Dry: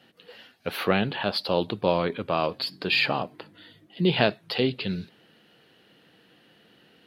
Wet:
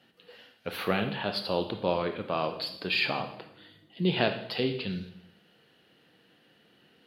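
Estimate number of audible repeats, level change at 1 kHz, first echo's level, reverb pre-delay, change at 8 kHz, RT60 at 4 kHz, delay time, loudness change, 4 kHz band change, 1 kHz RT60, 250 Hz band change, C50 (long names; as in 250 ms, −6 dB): no echo audible, −4.0 dB, no echo audible, 23 ms, can't be measured, 0.70 s, no echo audible, −4.0 dB, −4.0 dB, 0.75 s, −4.0 dB, 9.5 dB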